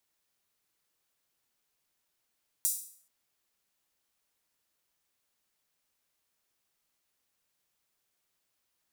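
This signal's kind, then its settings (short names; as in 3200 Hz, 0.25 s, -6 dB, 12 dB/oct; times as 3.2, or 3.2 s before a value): open hi-hat length 0.43 s, high-pass 7900 Hz, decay 0.53 s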